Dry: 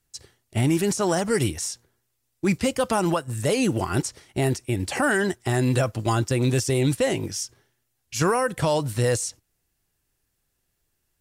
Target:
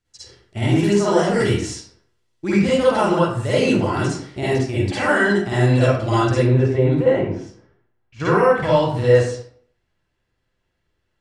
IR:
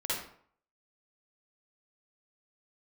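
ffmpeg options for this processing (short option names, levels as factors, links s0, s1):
-filter_complex "[0:a]asetnsamples=n=441:p=0,asendcmd='6.37 lowpass f 1500;8.2 lowpass f 3500',lowpass=5500[s0];[1:a]atrim=start_sample=2205[s1];[s0][s1]afir=irnorm=-1:irlink=0"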